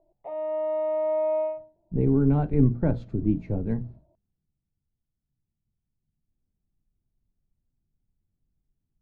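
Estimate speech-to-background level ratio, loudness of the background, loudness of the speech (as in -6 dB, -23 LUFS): 3.0 dB, -28.0 LUFS, -25.0 LUFS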